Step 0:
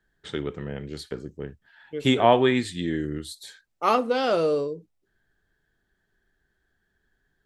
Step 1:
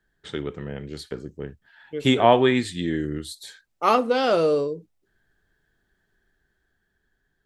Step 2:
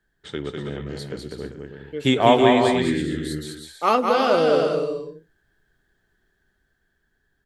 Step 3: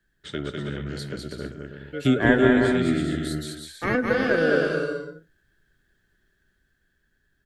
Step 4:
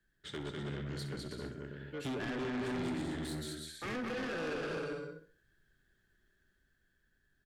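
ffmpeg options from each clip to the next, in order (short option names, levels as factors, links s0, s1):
-af "dynaudnorm=f=230:g=11:m=1.41"
-af "aecho=1:1:200|320|392|435.2|461.1:0.631|0.398|0.251|0.158|0.1"
-filter_complex "[0:a]acrossover=split=470|980[s0][s1][s2];[s1]aeval=exprs='val(0)*sin(2*PI*1000*n/s)':c=same[s3];[s2]acompressor=threshold=0.02:ratio=6[s4];[s0][s3][s4]amix=inputs=3:normalize=0,volume=1.12"
-af "alimiter=limit=0.251:level=0:latency=1:release=129,asoftclip=type=tanh:threshold=0.0335,aecho=1:1:64|128|192|256:0.251|0.0955|0.0363|0.0138,volume=0.501"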